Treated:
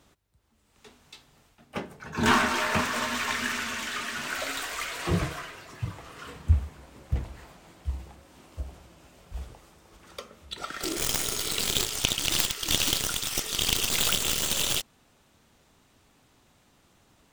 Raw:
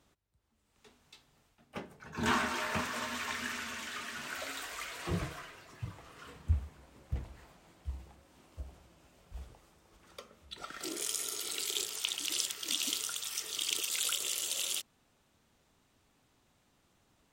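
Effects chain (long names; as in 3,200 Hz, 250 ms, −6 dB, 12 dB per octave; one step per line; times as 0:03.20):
stylus tracing distortion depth 0.14 ms
level +8.5 dB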